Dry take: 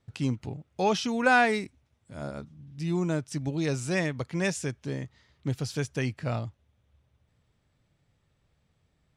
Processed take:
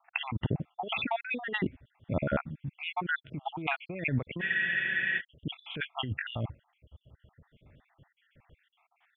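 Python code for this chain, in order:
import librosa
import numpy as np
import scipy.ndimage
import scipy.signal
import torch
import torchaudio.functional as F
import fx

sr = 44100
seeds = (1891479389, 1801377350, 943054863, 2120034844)

y = fx.spec_dropout(x, sr, seeds[0], share_pct=65)
y = scipy.signal.sosfilt(scipy.signal.cheby1(8, 1.0, 3400.0, 'lowpass', fs=sr, output='sos'), y)
y = fx.over_compress(y, sr, threshold_db=-40.0, ratio=-1.0)
y = fx.spec_freeze(y, sr, seeds[1], at_s=4.44, hold_s=0.74)
y = y * librosa.db_to_amplitude(8.0)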